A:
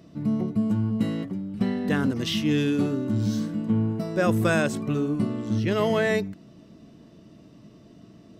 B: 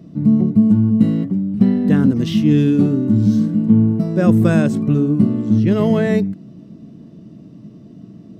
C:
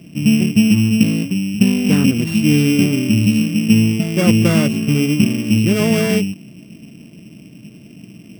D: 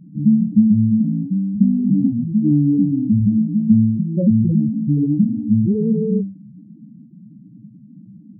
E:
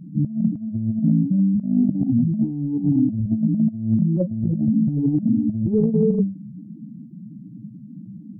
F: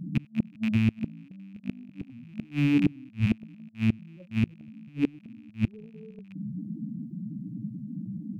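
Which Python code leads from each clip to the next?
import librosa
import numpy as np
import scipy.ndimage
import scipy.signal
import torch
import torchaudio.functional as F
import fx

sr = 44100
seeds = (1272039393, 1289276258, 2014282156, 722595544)

y1 = fx.peak_eq(x, sr, hz=180.0, db=15.0, octaves=2.5)
y1 = F.gain(torch.from_numpy(y1), -2.0).numpy()
y2 = np.r_[np.sort(y1[:len(y1) // 16 * 16].reshape(-1, 16), axis=1).ravel(), y1[len(y1) // 16 * 16:]]
y3 = scipy.ndimage.median_filter(y2, 9, mode='constant')
y3 = fx.spec_topn(y3, sr, count=4)
y3 = fx.end_taper(y3, sr, db_per_s=140.0)
y4 = fx.over_compress(y3, sr, threshold_db=-19.0, ratio=-0.5)
y5 = fx.rattle_buzz(y4, sr, strikes_db=-29.0, level_db=-25.0)
y5 = fx.gate_flip(y5, sr, shuts_db=-14.0, range_db=-29)
y5 = F.gain(torch.from_numpy(y5), 1.5).numpy()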